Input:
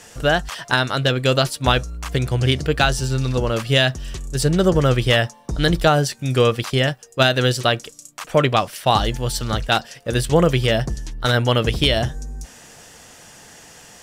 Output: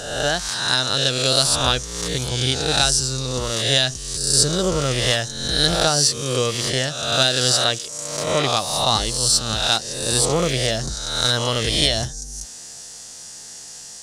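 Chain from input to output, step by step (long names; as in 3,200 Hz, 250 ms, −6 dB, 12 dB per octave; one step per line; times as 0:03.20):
peak hold with a rise ahead of every peak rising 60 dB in 1.01 s
flat-topped bell 6,300 Hz +14 dB
level that may rise only so fast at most 460 dB per second
level −7 dB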